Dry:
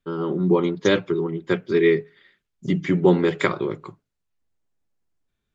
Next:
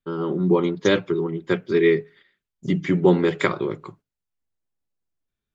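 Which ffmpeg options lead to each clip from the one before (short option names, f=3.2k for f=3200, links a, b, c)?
-af "agate=range=-7dB:threshold=-49dB:ratio=16:detection=peak"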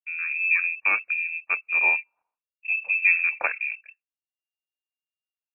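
-af "afwtdn=0.0355,lowpass=f=2.4k:t=q:w=0.5098,lowpass=f=2.4k:t=q:w=0.6013,lowpass=f=2.4k:t=q:w=0.9,lowpass=f=2.4k:t=q:w=2.563,afreqshift=-2800,volume=-4dB"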